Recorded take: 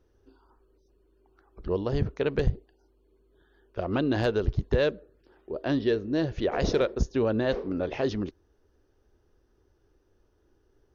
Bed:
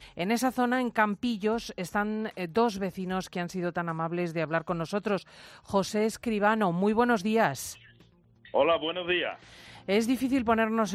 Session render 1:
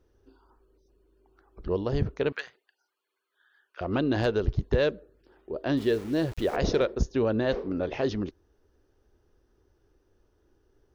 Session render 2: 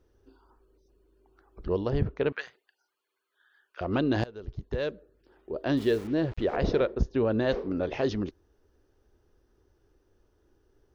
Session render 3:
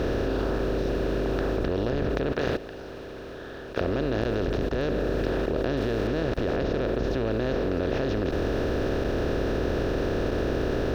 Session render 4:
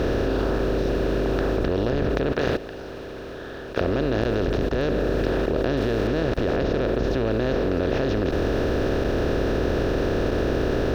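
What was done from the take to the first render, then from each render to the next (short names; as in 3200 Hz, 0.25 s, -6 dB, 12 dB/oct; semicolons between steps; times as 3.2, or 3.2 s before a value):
2.32–3.81 resonant high-pass 1500 Hz, resonance Q 1.7; 5.77–6.56 sample gate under -40.5 dBFS
1.9–2.41 LPF 3200 Hz; 4.24–5.56 fade in, from -23.5 dB; 6.07–7.31 air absorption 190 m
per-bin compression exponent 0.2; level quantiser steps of 13 dB
gain +3.5 dB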